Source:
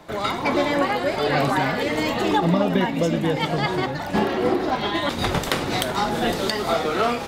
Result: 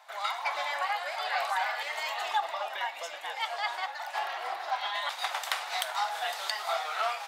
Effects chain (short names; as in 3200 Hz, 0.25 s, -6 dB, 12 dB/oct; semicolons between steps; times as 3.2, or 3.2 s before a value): Chebyshev high-pass 720 Hz, order 4; gain -6 dB